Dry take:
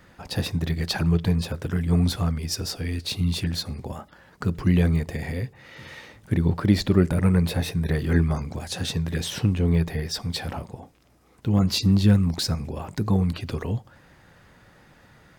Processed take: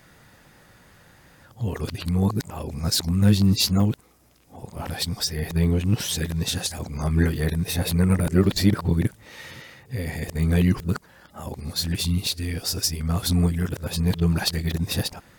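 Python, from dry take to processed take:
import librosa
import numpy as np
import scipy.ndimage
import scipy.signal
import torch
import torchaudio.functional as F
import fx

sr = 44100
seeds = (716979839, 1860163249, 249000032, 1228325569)

y = x[::-1].copy()
y = fx.high_shelf(y, sr, hz=6100.0, db=11.0)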